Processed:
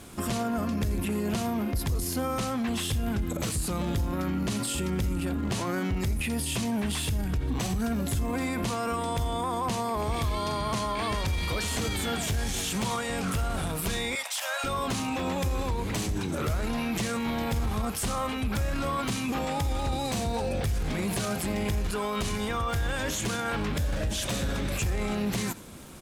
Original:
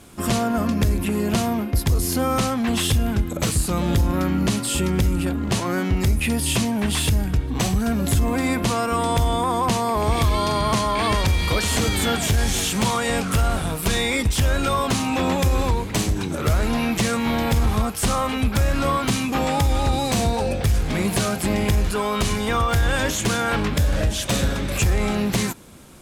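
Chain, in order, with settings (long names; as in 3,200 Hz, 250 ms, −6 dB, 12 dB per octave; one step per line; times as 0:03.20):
0:14.15–0:14.64: Butterworth high-pass 580 Hz 72 dB per octave
brickwall limiter −22 dBFS, peak gain reduction 9.5 dB
surface crackle 67 per second −41 dBFS
single-tap delay 82 ms −20.5 dB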